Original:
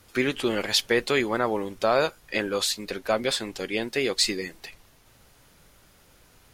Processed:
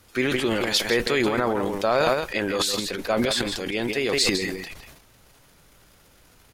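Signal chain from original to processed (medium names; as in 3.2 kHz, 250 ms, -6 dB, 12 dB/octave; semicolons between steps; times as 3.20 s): echo from a far wall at 28 m, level -10 dB; transient shaper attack 0 dB, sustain +12 dB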